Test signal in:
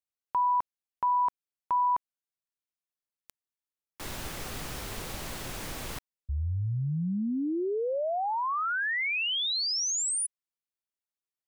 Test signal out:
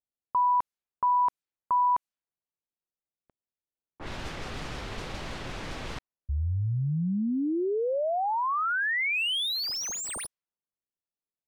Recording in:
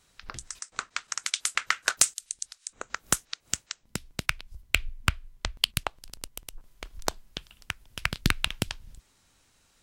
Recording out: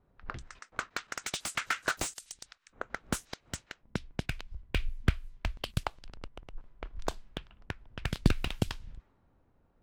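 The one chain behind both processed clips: low-pass opened by the level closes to 680 Hz, open at -29 dBFS; slew limiter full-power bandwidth 110 Hz; gain +2 dB

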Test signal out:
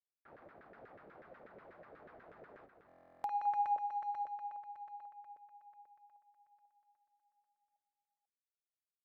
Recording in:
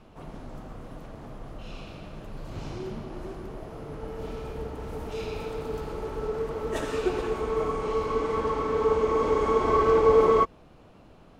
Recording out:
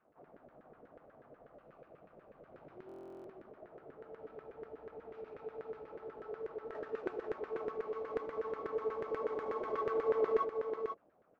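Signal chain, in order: median filter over 15 samples; low-pass opened by the level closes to 2200 Hz, open at -20.5 dBFS; bell 980 Hz -9 dB 0.73 oct; LFO band-pass saw down 8.2 Hz 460–1700 Hz; on a send: echo 0.492 s -6 dB; on the sum: stuck buffer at 2.87, samples 1024, times 15; gain -4.5 dB

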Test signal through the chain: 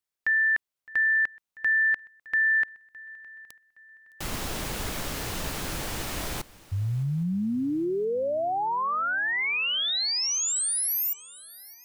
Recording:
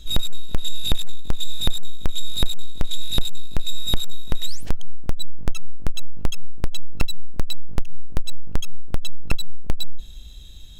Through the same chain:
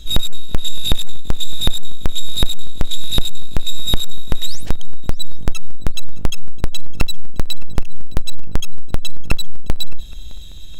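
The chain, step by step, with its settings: swung echo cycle 0.817 s, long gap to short 3:1, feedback 36%, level -21.5 dB; gain +5 dB

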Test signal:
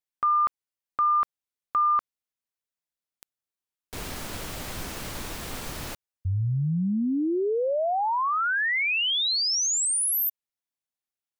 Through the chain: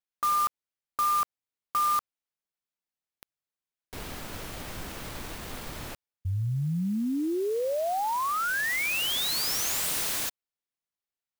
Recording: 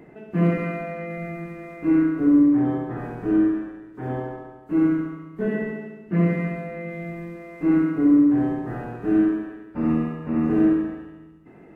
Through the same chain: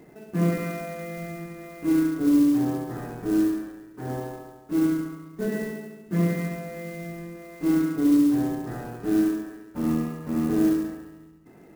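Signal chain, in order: clock jitter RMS 0.032 ms; gain -3 dB

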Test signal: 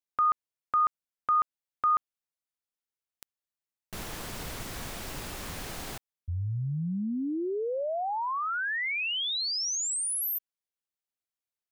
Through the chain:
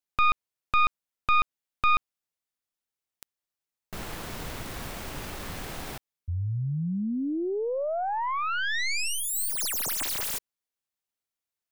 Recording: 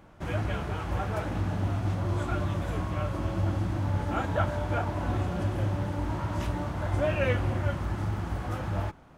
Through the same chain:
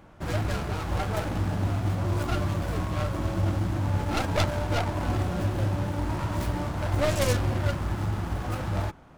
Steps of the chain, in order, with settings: tracing distortion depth 0.5 ms; gain +2 dB

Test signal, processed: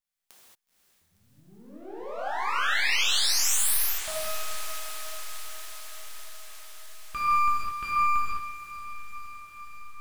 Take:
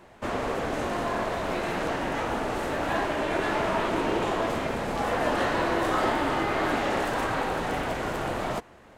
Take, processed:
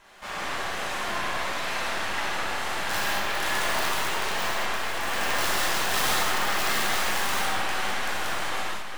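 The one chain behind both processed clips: HPF 1100 Hz 12 dB/oct; in parallel at -1 dB: compressor 6:1, threshold -47 dBFS; on the sum: half-wave rectifier; on a send: diffused feedback echo 0.495 s, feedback 74%, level -12.5 dB; on the sum: wrapped overs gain 21.5 dB; non-linear reverb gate 0.25 s flat, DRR -7.5 dB

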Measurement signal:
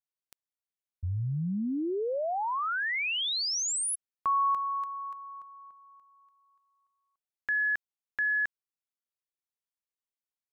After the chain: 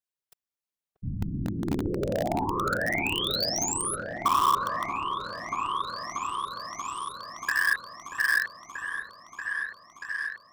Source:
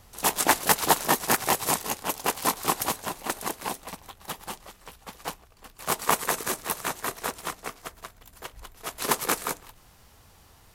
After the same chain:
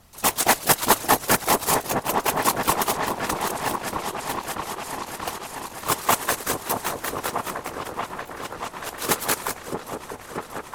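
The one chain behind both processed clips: whisperiser; in parallel at -7 dB: bit-crush 4-bit; on the sum: repeats that get brighter 0.634 s, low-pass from 750 Hz, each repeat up 1 oct, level -3 dB

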